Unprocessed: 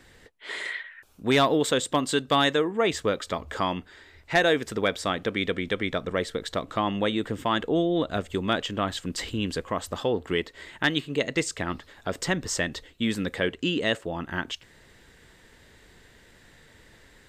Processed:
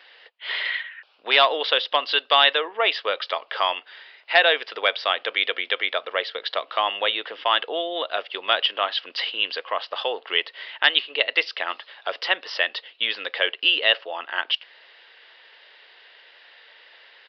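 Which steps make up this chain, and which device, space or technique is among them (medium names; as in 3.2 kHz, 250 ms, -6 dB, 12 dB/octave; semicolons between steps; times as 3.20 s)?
musical greeting card (resampled via 11.025 kHz; high-pass 560 Hz 24 dB/octave; peaking EQ 2.9 kHz +9 dB 0.49 oct); trim +4.5 dB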